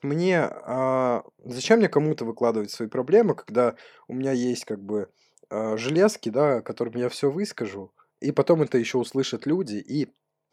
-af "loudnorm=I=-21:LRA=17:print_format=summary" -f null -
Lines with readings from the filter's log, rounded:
Input Integrated:    -24.8 LUFS
Input True Peak:      -4.6 dBTP
Input LRA:             2.8 LU
Input Threshold:     -35.3 LUFS